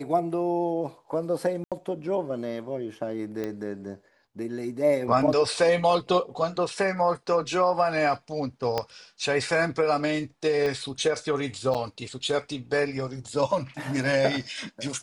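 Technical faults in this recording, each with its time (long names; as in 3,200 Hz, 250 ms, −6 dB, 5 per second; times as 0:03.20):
0:01.64–0:01.72: drop-out 77 ms
0:03.44: click −19 dBFS
0:08.78: click −12 dBFS
0:10.66: click −17 dBFS
0:11.74–0:11.75: drop-out 6.9 ms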